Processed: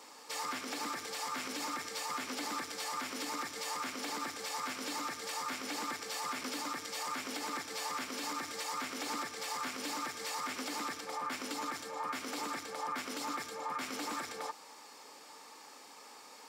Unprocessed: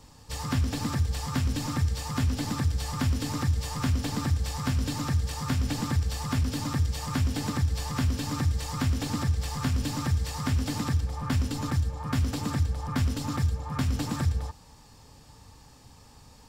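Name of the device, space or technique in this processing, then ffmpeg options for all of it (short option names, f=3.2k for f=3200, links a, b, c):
laptop speaker: -af "highpass=f=330:w=0.5412,highpass=f=330:w=1.3066,equalizer=f=1.3k:t=o:w=0.52:g=5,equalizer=f=2.2k:t=o:w=0.2:g=8.5,alimiter=level_in=7.5dB:limit=-24dB:level=0:latency=1:release=101,volume=-7.5dB,volume=2.5dB"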